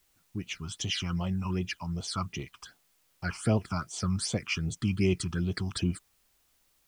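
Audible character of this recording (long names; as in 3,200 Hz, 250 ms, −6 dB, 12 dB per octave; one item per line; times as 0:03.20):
phaser sweep stages 8, 2.6 Hz, lowest notch 490–1,600 Hz
a quantiser's noise floor 12 bits, dither triangular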